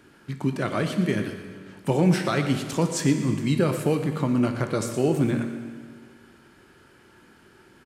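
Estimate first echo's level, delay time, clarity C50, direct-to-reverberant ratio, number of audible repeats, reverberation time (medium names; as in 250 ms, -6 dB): -14.5 dB, 117 ms, 7.0 dB, 5.5 dB, 1, 1.8 s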